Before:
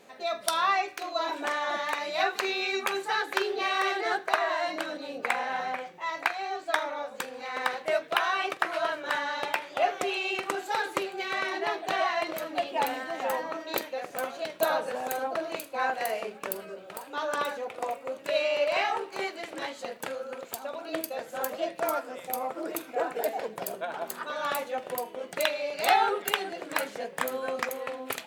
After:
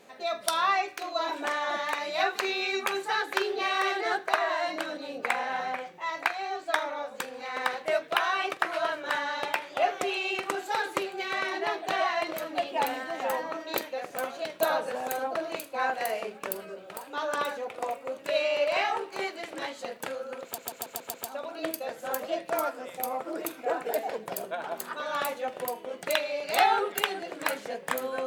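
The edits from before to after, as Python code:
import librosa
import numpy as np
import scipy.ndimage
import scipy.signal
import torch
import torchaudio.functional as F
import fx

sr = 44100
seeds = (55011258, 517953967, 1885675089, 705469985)

y = fx.edit(x, sr, fx.stutter(start_s=20.44, slice_s=0.14, count=6), tone=tone)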